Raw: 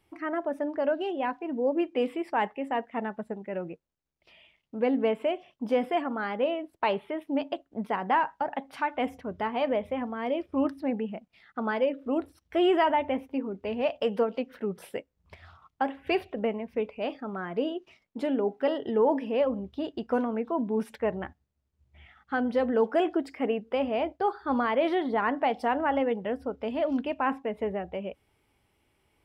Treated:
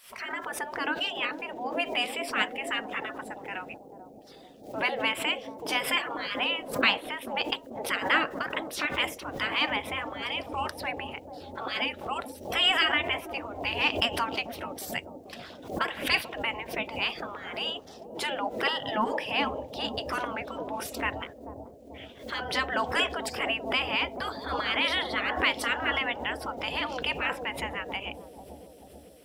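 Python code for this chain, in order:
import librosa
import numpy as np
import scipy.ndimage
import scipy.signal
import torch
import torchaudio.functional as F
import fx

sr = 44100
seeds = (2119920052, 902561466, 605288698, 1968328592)

y = fx.spec_gate(x, sr, threshold_db=-15, keep='weak')
y = fx.high_shelf(y, sr, hz=3000.0, db=11.5)
y = fx.echo_bbd(y, sr, ms=439, stages=2048, feedback_pct=68, wet_db=-5.5)
y = fx.pre_swell(y, sr, db_per_s=110.0)
y = F.gain(torch.from_numpy(y), 8.5).numpy()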